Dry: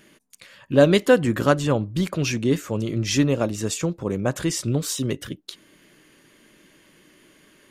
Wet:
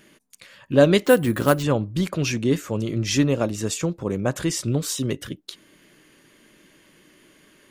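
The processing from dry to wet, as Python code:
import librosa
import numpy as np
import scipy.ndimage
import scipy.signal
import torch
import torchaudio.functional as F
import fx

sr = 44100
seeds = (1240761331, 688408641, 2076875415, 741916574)

y = fx.resample_bad(x, sr, factor=4, down='none', up='hold', at=(1.05, 1.63))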